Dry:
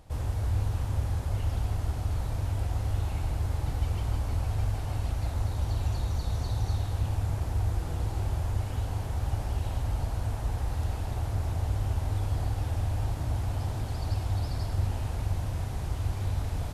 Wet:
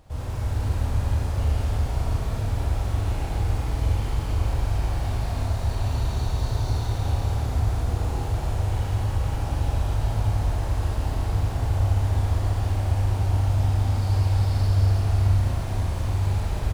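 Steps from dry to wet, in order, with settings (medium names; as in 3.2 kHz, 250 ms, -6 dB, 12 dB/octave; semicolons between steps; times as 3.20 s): median filter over 3 samples; doubling 39 ms -12 dB; Schroeder reverb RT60 3.4 s, combs from 28 ms, DRR -5 dB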